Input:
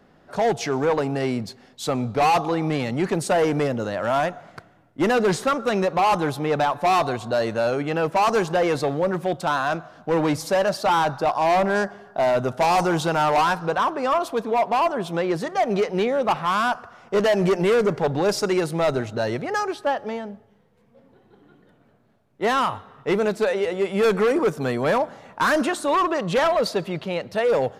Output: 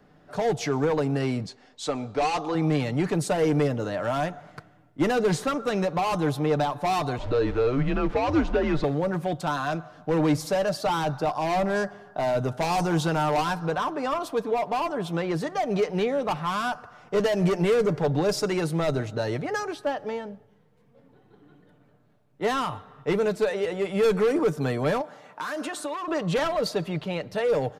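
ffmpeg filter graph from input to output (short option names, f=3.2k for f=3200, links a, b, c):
-filter_complex "[0:a]asettb=1/sr,asplit=3[a][b][c];[a]atrim=end=1.464[d];[b]atrim=start=1.46:end=2.55,asetpts=PTS-STARTPTS,afade=t=in:d=0.004:c=qsin,afade=t=out:st=1.086:d=0.004:c=qsin,lowpass=f=8.9k:w=0.5412,lowpass=f=8.9k:w=1.3066,equalizer=f=140:t=o:w=1.1:g=-13[e];[c]atrim=start=2.546[f];[d][e]acrossfade=d=0.004:c1=hsin:c2=qsin[g];[g][f]acrossfade=d=0.004:c1=qsin:c2=hsin,asettb=1/sr,asplit=3[h][i][j];[h]atrim=end=7.184[k];[i]atrim=start=7.18:end=8.84,asetpts=PTS-STARTPTS,afade=t=in:d=0.004:c=qsin,afade=t=out:st=1.656:d=0.004:c=qsin,aeval=exprs='val(0)+0.5*0.02*sgn(val(0))':c=same,lowpass=3.4k,afreqshift=-130[l];[j]atrim=start=8.836[m];[k][l]acrossfade=d=0.004:c1=hsin:c2=qsin[n];[n][m]acrossfade=d=0.004:c1=qsin:c2=hsin,asettb=1/sr,asplit=3[o][p][q];[o]atrim=end=25.014[r];[p]atrim=start=25.01:end=26.08,asetpts=PTS-STARTPTS,afade=t=in:d=0.004:c=qsin,afade=t=out:st=1.066:d=0.004:c=qsin,highpass=f=390:p=1,acompressor=threshold=-26dB:ratio=10:attack=3.2:release=140:knee=1:detection=peak[s];[q]atrim=start=26.076[t];[r][s]acrossfade=d=0.004:c1=hsin:c2=qsin[u];[u][t]acrossfade=d=0.004:c1=qsin:c2=hsin,lowshelf=f=210:g=4,aecho=1:1:6.7:0.39,acrossover=split=460|3000[v][w][x];[w]acompressor=threshold=-25dB:ratio=2[y];[v][y][x]amix=inputs=3:normalize=0,volume=-3.5dB"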